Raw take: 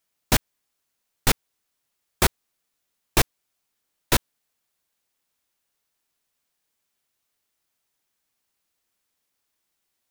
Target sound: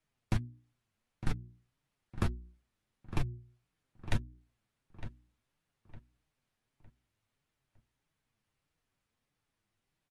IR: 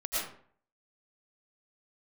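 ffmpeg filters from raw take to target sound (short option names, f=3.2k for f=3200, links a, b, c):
-filter_complex "[0:a]bass=f=250:g=14,treble=f=4k:g=-11,bandreject=f=60:t=h:w=6,bandreject=f=120:t=h:w=6,bandreject=f=180:t=h:w=6,bandreject=f=240:t=h:w=6,bandreject=f=300:t=h:w=6,bandreject=f=360:t=h:w=6,acompressor=threshold=-21dB:ratio=8,alimiter=limit=-14dB:level=0:latency=1:release=82,acrossover=split=300[a][b];[b]acompressor=threshold=-32dB:ratio=6[c];[a][c]amix=inputs=2:normalize=0,flanger=delay=6.1:depth=3.4:regen=30:speed=1.6:shape=triangular,asplit=2[d][e];[e]adelay=908,lowpass=f=2.6k:p=1,volume=-12dB,asplit=2[f][g];[g]adelay=908,lowpass=f=2.6k:p=1,volume=0.37,asplit=2[h][i];[i]adelay=908,lowpass=f=2.6k:p=1,volume=0.37,asplit=2[j][k];[k]adelay=908,lowpass=f=2.6k:p=1,volume=0.37[l];[f][h][j][l]amix=inputs=4:normalize=0[m];[d][m]amix=inputs=2:normalize=0,volume=1.5dB" -ar 32000 -c:a ac3 -b:a 64k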